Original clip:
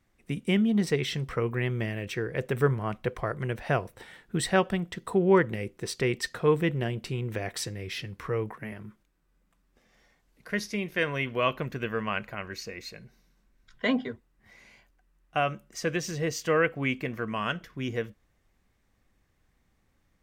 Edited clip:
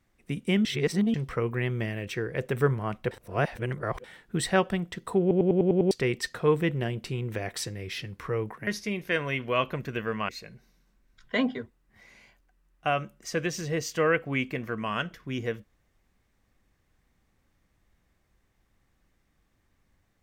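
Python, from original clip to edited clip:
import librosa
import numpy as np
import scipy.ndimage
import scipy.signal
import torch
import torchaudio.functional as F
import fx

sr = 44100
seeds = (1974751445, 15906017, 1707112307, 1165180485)

y = fx.edit(x, sr, fx.reverse_span(start_s=0.65, length_s=0.49),
    fx.reverse_span(start_s=3.11, length_s=0.93),
    fx.stutter_over(start_s=5.21, slice_s=0.1, count=7),
    fx.cut(start_s=8.67, length_s=1.87),
    fx.cut(start_s=12.16, length_s=0.63), tone=tone)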